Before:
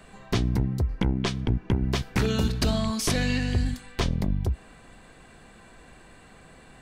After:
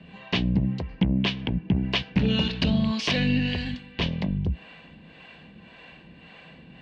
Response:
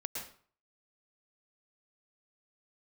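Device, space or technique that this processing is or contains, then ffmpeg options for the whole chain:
guitar amplifier with harmonic tremolo: -filter_complex "[0:a]acrossover=split=420[link_01][link_02];[link_01]aeval=exprs='val(0)*(1-0.7/2+0.7/2*cos(2*PI*1.8*n/s))':channel_layout=same[link_03];[link_02]aeval=exprs='val(0)*(1-0.7/2-0.7/2*cos(2*PI*1.8*n/s))':channel_layout=same[link_04];[link_03][link_04]amix=inputs=2:normalize=0,asoftclip=type=tanh:threshold=-19dB,highpass=82,equalizer=frequency=110:width_type=q:width=4:gain=-8,equalizer=frequency=170:width_type=q:width=4:gain=7,equalizer=frequency=390:width_type=q:width=4:gain=-6,equalizer=frequency=730:width_type=q:width=4:gain=-4,equalizer=frequency=1300:width_type=q:width=4:gain=-10,equalizer=frequency=2800:width_type=q:width=4:gain=9,lowpass=frequency=4200:width=0.5412,lowpass=frequency=4200:width=1.3066,volume=6.5dB"

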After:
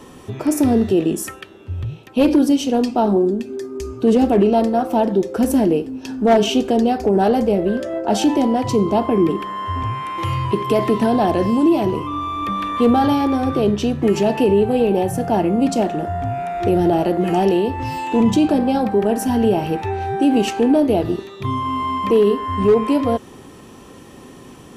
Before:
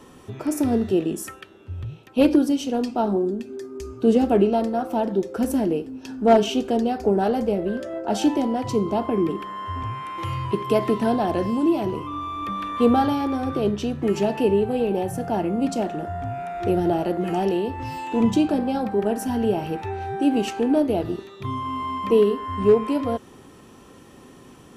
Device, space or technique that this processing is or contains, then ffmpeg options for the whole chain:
clipper into limiter: -af "asoftclip=type=hard:threshold=-10dB,alimiter=limit=-14dB:level=0:latency=1:release=16,equalizer=frequency=1400:width_type=o:width=0.26:gain=-3.5,volume=6.5dB"

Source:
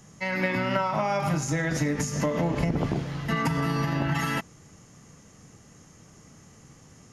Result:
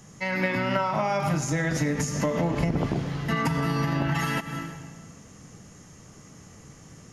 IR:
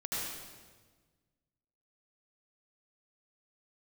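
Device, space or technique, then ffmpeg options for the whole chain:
ducked reverb: -filter_complex "[0:a]asplit=3[link_01][link_02][link_03];[1:a]atrim=start_sample=2205[link_04];[link_02][link_04]afir=irnorm=-1:irlink=0[link_05];[link_03]apad=whole_len=314342[link_06];[link_05][link_06]sidechaincompress=threshold=-38dB:ratio=5:attack=5.1:release=157,volume=-6.5dB[link_07];[link_01][link_07]amix=inputs=2:normalize=0"

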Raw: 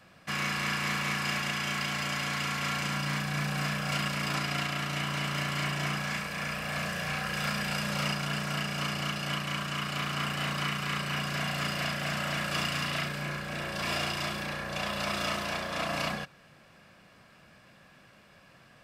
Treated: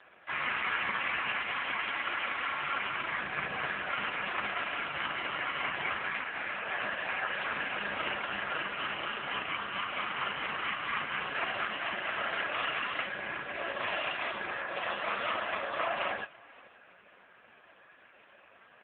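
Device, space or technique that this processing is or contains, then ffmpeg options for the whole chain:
satellite phone: -af "highpass=380,lowpass=3300,aecho=1:1:514:0.0668,volume=6dB" -ar 8000 -c:a libopencore_amrnb -b:a 4750

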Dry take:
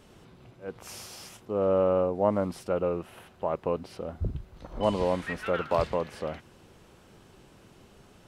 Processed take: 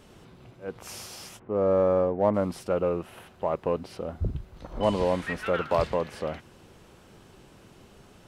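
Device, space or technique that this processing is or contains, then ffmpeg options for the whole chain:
parallel distortion: -filter_complex "[0:a]asplit=3[link_01][link_02][link_03];[link_01]afade=type=out:start_time=1.38:duration=0.02[link_04];[link_02]lowpass=frequency=2200:width=0.5412,lowpass=frequency=2200:width=1.3066,afade=type=in:start_time=1.38:duration=0.02,afade=type=out:start_time=2.33:duration=0.02[link_05];[link_03]afade=type=in:start_time=2.33:duration=0.02[link_06];[link_04][link_05][link_06]amix=inputs=3:normalize=0,asplit=2[link_07][link_08];[link_08]asoftclip=type=hard:threshold=-23.5dB,volume=-11dB[link_09];[link_07][link_09]amix=inputs=2:normalize=0"

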